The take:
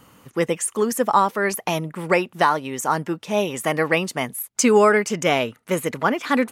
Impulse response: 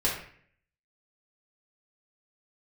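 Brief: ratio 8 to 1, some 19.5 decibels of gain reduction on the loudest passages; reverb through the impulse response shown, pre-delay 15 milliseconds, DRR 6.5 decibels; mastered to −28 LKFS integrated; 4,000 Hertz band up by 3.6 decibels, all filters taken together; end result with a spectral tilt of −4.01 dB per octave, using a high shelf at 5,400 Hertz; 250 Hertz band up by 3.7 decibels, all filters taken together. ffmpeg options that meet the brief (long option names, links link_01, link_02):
-filter_complex "[0:a]equalizer=frequency=250:width_type=o:gain=4.5,equalizer=frequency=4000:width_type=o:gain=3,highshelf=frequency=5400:gain=5.5,acompressor=threshold=-30dB:ratio=8,asplit=2[link_01][link_02];[1:a]atrim=start_sample=2205,adelay=15[link_03];[link_02][link_03]afir=irnorm=-1:irlink=0,volume=-16.5dB[link_04];[link_01][link_04]amix=inputs=2:normalize=0,volume=5dB"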